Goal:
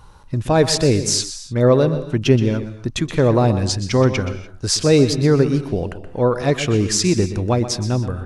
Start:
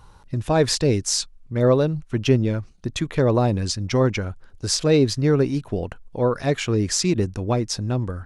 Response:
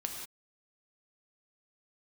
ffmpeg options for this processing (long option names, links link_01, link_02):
-filter_complex "[0:a]asplit=2[link_01][link_02];[1:a]atrim=start_sample=2205,afade=type=out:start_time=0.23:duration=0.01,atrim=end_sample=10584,adelay=124[link_03];[link_02][link_03]afir=irnorm=-1:irlink=0,volume=-11.5dB[link_04];[link_01][link_04]amix=inputs=2:normalize=0,volume=3.5dB"